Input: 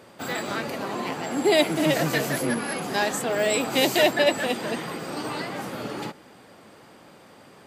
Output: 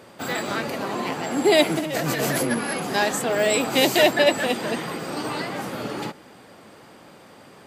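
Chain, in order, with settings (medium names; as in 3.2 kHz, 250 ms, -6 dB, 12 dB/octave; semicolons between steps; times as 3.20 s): 1.79–2.51 s: compressor with a negative ratio -27 dBFS, ratio -1; trim +2.5 dB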